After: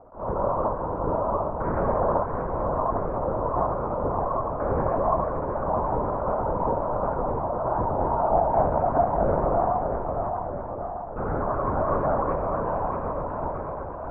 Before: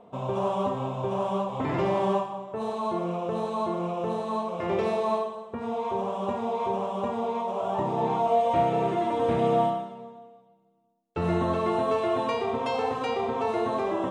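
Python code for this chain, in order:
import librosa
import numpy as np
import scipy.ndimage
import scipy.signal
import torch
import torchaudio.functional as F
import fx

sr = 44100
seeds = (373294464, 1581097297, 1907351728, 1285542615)

p1 = fx.fade_out_tail(x, sr, length_s=2.28)
p2 = scipy.signal.sosfilt(scipy.signal.ellip(4, 1.0, 80, 1500.0, 'lowpass', fs=sr, output='sos'), p1)
p3 = fx.low_shelf(p2, sr, hz=420.0, db=-10.0)
p4 = fx.rider(p3, sr, range_db=3, speed_s=2.0)
p5 = p3 + F.gain(torch.from_numpy(p4), 1.0).numpy()
p6 = fx.echo_feedback(p5, sr, ms=630, feedback_pct=59, wet_db=-5.0)
p7 = fx.lpc_vocoder(p6, sr, seeds[0], excitation='whisper', order=8)
p8 = fx.attack_slew(p7, sr, db_per_s=170.0)
y = F.gain(torch.from_numpy(p8), -1.5).numpy()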